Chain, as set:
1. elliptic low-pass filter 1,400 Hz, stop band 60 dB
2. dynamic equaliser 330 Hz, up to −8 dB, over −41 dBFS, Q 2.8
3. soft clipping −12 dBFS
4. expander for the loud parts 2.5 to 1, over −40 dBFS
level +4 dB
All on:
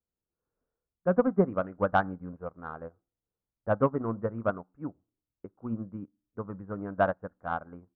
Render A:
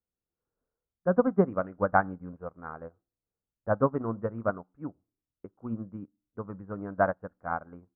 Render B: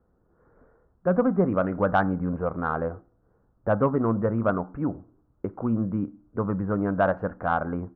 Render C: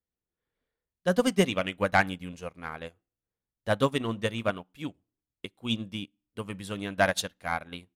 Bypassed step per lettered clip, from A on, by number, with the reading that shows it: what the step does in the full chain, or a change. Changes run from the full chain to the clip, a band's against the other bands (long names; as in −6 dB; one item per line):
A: 3, distortion level −26 dB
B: 4, 125 Hz band +3.5 dB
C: 1, 2 kHz band +7.0 dB